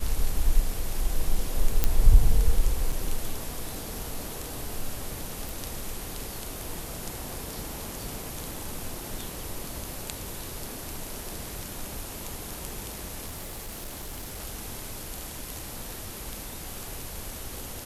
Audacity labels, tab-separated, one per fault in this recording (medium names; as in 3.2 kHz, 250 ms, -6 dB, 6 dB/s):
1.840000	1.840000	pop -7 dBFS
2.920000	2.920000	dropout 3.8 ms
5.490000	5.490000	pop
13.260000	14.400000	clipped -33 dBFS